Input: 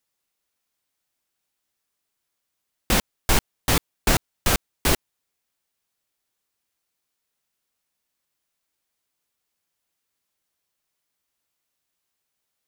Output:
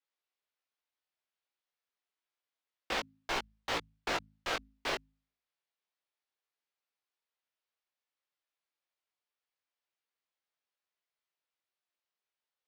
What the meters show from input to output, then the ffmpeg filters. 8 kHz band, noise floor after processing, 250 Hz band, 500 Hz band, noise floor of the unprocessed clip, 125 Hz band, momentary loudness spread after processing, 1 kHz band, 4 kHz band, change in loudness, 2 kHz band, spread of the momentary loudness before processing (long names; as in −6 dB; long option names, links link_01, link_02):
−21.5 dB, below −85 dBFS, −18.0 dB, −10.5 dB, −80 dBFS, −26.0 dB, 1 LU, −9.0 dB, −11.0 dB, −13.0 dB, −9.0 dB, 1 LU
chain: -filter_complex "[0:a]flanger=delay=17:depth=4:speed=0.28,acrossover=split=350 5100:gain=0.126 1 0.0708[link_01][link_02][link_03];[link_01][link_02][link_03]amix=inputs=3:normalize=0,bandreject=frequency=53.14:width_type=h:width=4,bandreject=frequency=106.28:width_type=h:width=4,bandreject=frequency=159.42:width_type=h:width=4,bandreject=frequency=212.56:width_type=h:width=4,bandreject=frequency=265.7:width_type=h:width=4,volume=-6dB"